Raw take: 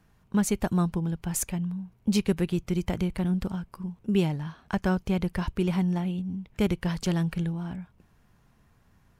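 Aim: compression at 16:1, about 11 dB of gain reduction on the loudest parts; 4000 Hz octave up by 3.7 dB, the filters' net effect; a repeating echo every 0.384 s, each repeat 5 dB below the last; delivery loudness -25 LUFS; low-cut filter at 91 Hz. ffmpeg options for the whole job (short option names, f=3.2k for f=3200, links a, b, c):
-af "highpass=91,equalizer=f=4k:t=o:g=5,acompressor=threshold=-30dB:ratio=16,aecho=1:1:384|768|1152|1536|1920|2304|2688:0.562|0.315|0.176|0.0988|0.0553|0.031|0.0173,volume=9.5dB"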